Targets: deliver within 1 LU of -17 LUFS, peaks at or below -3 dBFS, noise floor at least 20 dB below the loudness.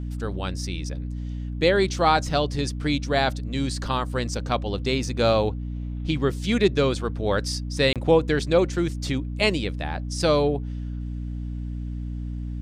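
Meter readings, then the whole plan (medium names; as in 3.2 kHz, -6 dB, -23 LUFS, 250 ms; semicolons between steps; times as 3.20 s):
dropouts 1; longest dropout 27 ms; hum 60 Hz; highest harmonic 300 Hz; hum level -28 dBFS; loudness -25.0 LUFS; peak level -6.0 dBFS; loudness target -17.0 LUFS
-> interpolate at 7.93 s, 27 ms; hum notches 60/120/180/240/300 Hz; trim +8 dB; peak limiter -3 dBFS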